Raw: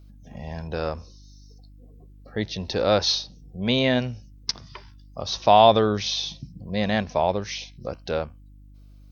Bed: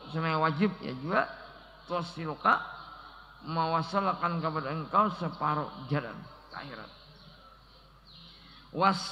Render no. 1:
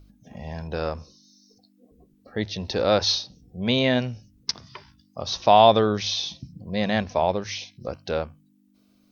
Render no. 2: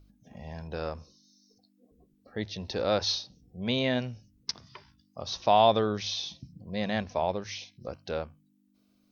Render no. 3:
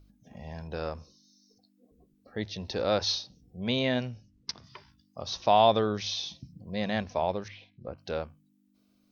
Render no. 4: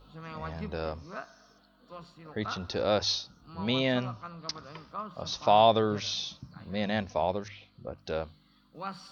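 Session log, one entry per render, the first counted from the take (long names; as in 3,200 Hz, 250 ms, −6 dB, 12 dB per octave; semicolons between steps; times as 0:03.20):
hum removal 50 Hz, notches 3
level −6.5 dB
0:04.08–0:04.64: high-frequency loss of the air 63 metres; 0:07.48–0:07.98: high-frequency loss of the air 480 metres
mix in bed −13.5 dB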